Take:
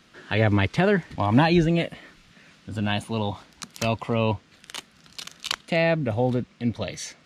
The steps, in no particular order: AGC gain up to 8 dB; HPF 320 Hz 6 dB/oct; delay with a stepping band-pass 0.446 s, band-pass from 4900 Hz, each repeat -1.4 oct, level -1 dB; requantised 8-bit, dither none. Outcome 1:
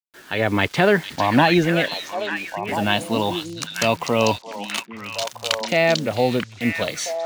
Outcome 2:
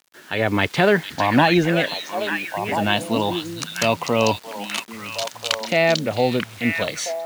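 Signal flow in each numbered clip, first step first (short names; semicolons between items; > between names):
HPF > requantised > AGC > delay with a stepping band-pass; delay with a stepping band-pass > requantised > HPF > AGC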